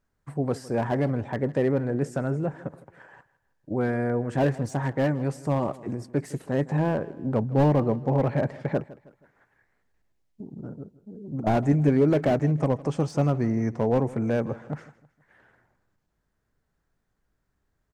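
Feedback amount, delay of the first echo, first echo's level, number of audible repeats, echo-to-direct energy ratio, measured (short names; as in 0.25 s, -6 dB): 41%, 0.159 s, -19.0 dB, 3, -18.0 dB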